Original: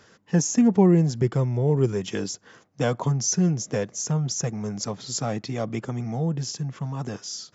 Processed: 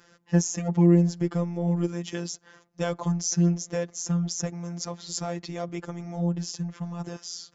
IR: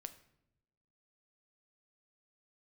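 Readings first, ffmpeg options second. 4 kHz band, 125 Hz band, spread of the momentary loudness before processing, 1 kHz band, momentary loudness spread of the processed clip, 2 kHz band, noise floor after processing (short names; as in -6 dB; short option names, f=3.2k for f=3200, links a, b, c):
-3.0 dB, -2.5 dB, 12 LU, -4.5 dB, 14 LU, -3.5 dB, -61 dBFS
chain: -af "afftfilt=real='hypot(re,im)*cos(PI*b)':imag='0':win_size=1024:overlap=0.75"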